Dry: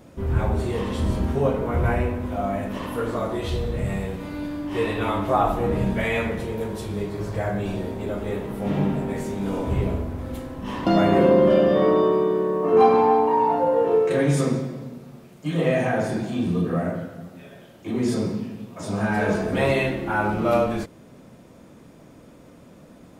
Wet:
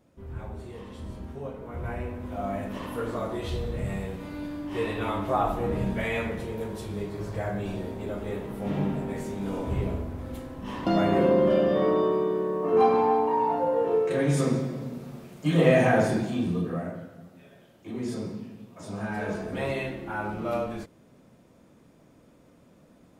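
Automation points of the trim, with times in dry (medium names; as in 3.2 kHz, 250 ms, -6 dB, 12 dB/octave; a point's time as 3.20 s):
1.56 s -15.5 dB
2.51 s -5 dB
14.14 s -5 dB
15.05 s +2 dB
15.99 s +2 dB
16.92 s -9 dB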